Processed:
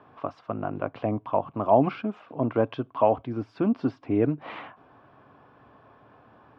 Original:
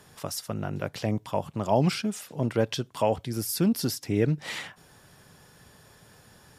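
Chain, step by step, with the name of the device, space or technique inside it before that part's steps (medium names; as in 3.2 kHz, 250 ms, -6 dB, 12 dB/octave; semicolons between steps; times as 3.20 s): bass cabinet (cabinet simulation 78–2400 Hz, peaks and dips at 85 Hz -6 dB, 170 Hz -10 dB, 280 Hz +8 dB, 690 Hz +7 dB, 1.1 kHz +9 dB, 1.9 kHz -9 dB)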